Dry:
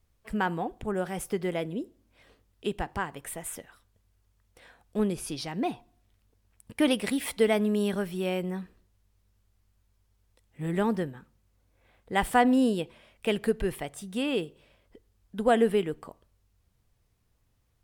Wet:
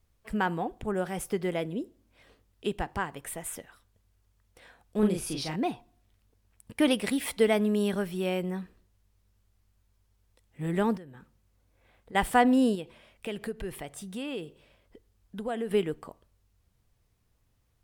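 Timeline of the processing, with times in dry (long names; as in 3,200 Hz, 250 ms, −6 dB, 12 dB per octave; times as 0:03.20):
0:04.99–0:05.56: double-tracking delay 38 ms −3 dB
0:10.97–0:12.15: downward compressor 5 to 1, threshold −44 dBFS
0:12.75–0:15.71: downward compressor 2 to 1, threshold −37 dBFS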